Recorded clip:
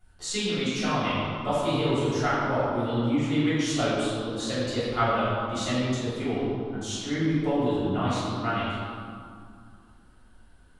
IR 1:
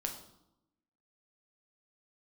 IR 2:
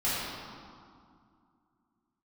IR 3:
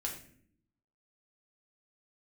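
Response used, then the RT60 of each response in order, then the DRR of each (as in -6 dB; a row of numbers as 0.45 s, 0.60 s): 2; 0.85 s, 2.3 s, 0.60 s; 2.5 dB, -12.0 dB, -1.0 dB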